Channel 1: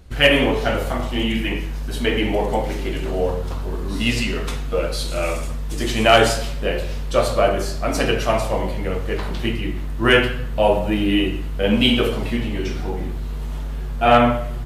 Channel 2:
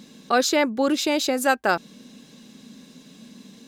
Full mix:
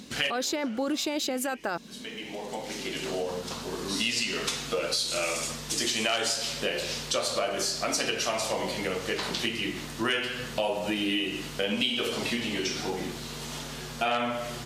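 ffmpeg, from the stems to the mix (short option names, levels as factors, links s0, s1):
-filter_complex "[0:a]highpass=180,equalizer=f=5700:t=o:w=2.2:g=14.5,acompressor=threshold=0.1:ratio=2.5,volume=0.841[s0];[1:a]alimiter=limit=0.15:level=0:latency=1:release=11,volume=0.944,asplit=2[s1][s2];[s2]apad=whole_len=646262[s3];[s0][s3]sidechaincompress=threshold=0.00708:ratio=8:attack=6.8:release=1120[s4];[s4][s1]amix=inputs=2:normalize=0,acompressor=threshold=0.0355:ratio=2"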